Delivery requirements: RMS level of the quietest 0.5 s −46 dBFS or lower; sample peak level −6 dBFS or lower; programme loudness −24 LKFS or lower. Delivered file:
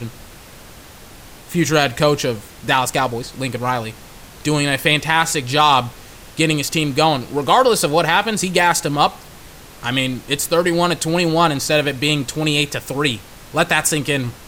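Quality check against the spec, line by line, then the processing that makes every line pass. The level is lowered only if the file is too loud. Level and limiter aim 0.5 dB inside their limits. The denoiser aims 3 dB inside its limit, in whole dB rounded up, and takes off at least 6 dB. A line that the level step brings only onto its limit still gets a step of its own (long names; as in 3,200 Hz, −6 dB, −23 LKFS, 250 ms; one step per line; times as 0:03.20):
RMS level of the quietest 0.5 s −40 dBFS: out of spec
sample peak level −1.5 dBFS: out of spec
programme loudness −17.5 LKFS: out of spec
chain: level −7 dB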